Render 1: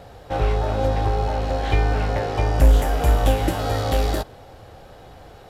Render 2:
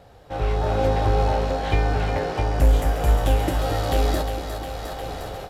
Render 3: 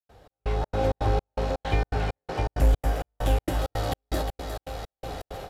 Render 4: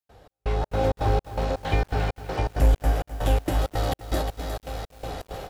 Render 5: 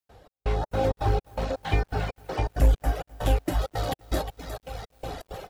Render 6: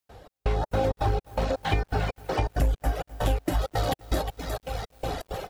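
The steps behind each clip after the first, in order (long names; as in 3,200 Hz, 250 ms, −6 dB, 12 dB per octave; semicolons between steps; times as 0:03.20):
echo with a time of its own for lows and highs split 410 Hz, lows 237 ms, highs 356 ms, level −8 dB; automatic gain control gain up to 16.5 dB; level −7 dB
gate pattern ".xx..xx.xx" 164 BPM −60 dB; level −3.5 dB
feedback echo at a low word length 256 ms, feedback 35%, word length 7 bits, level −13.5 dB; level +1.5 dB
reverb reduction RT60 1.9 s
downward compressor 4 to 1, threshold −26 dBFS, peak gain reduction 10.5 dB; level +4.5 dB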